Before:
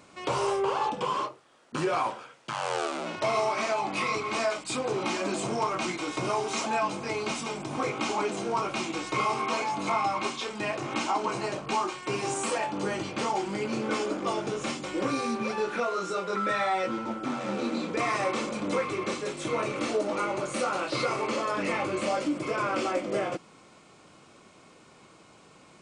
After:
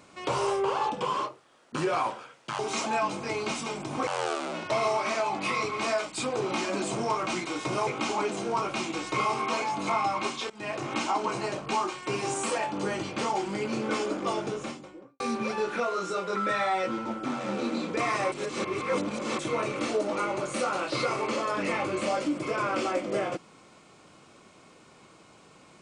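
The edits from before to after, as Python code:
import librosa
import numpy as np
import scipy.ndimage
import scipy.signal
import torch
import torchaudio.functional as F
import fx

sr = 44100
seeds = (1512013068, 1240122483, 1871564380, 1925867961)

y = fx.studio_fade_out(x, sr, start_s=14.35, length_s=0.85)
y = fx.edit(y, sr, fx.move(start_s=6.39, length_s=1.48, to_s=2.59),
    fx.fade_in_from(start_s=10.5, length_s=0.28, floor_db=-19.0),
    fx.reverse_span(start_s=18.32, length_s=1.07), tone=tone)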